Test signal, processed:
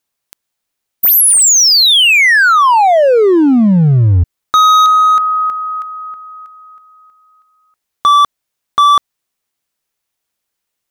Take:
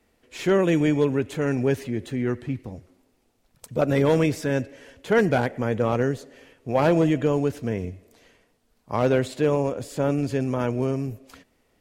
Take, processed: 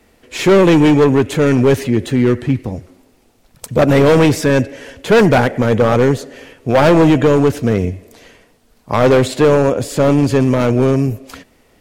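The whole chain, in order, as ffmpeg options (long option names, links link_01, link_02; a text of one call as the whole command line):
ffmpeg -i in.wav -af "acontrast=49,volume=13.5dB,asoftclip=hard,volume=-13.5dB,volume=7.5dB" out.wav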